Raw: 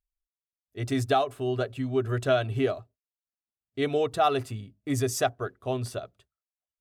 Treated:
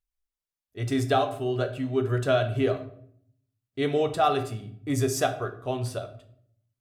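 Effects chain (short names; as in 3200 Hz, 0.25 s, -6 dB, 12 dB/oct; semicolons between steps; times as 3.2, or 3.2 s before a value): shoebox room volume 100 m³, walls mixed, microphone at 0.38 m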